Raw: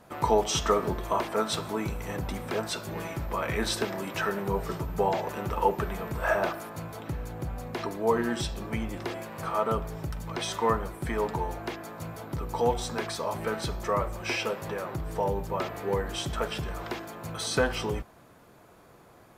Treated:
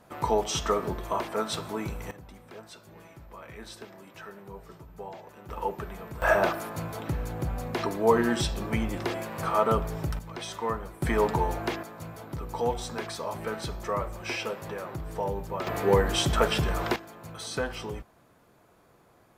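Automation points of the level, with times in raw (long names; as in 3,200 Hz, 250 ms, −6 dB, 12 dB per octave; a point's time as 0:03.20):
−2 dB
from 0:02.11 −15 dB
from 0:05.49 −6.5 dB
from 0:06.22 +3.5 dB
from 0:10.19 −5 dB
from 0:11.02 +4.5 dB
from 0:11.83 −2.5 dB
from 0:15.67 +7 dB
from 0:16.96 −5.5 dB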